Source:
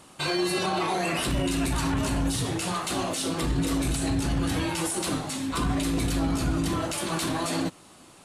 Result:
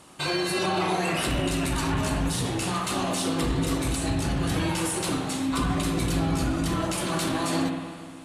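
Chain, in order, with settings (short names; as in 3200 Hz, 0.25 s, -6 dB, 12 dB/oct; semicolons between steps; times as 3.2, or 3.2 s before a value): added harmonics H 6 -43 dB, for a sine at -15.5 dBFS; spring tank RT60 2 s, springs 49/60 ms, chirp 65 ms, DRR 4 dB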